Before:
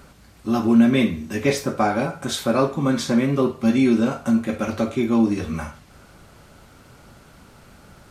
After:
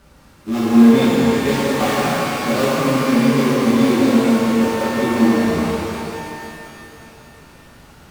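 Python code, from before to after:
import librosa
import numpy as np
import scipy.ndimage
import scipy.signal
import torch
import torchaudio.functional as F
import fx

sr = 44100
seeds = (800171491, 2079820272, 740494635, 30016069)

y = fx.dead_time(x, sr, dead_ms=0.22)
y = fx.echo_stepped(y, sr, ms=158, hz=1100.0, octaves=0.7, feedback_pct=70, wet_db=-3)
y = fx.rev_shimmer(y, sr, seeds[0], rt60_s=2.8, semitones=12, shimmer_db=-8, drr_db=-8.5)
y = F.gain(torch.from_numpy(y), -6.0).numpy()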